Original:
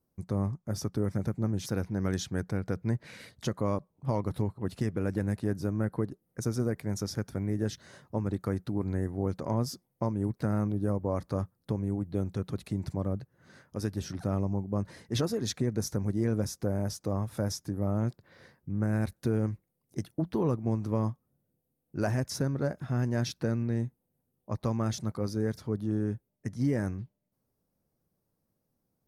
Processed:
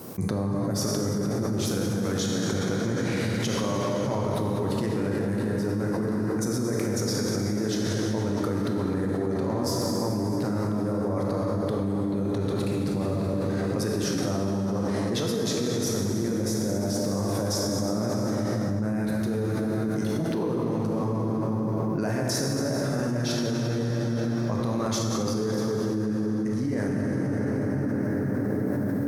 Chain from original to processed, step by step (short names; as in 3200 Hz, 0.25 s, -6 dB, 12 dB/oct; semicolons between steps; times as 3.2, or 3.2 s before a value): HPF 150 Hz 12 dB/oct; limiter -26 dBFS, peak gain reduction 9.5 dB; reverb RT60 5.3 s, pre-delay 13 ms, DRR -3.5 dB; fast leveller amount 100%